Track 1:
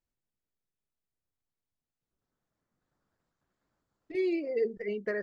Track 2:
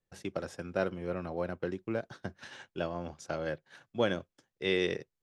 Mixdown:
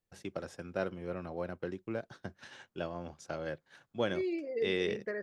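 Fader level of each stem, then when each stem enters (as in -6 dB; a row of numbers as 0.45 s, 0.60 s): -5.0 dB, -3.5 dB; 0.00 s, 0.00 s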